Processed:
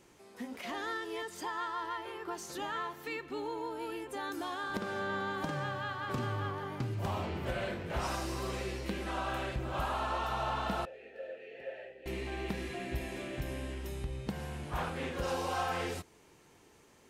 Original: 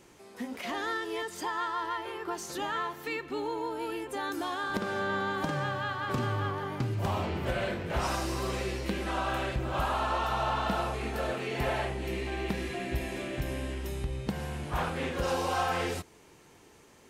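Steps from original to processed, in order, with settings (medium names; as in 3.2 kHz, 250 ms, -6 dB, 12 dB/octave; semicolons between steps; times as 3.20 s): 10.85–12.06 s: vowel filter e; trim -4.5 dB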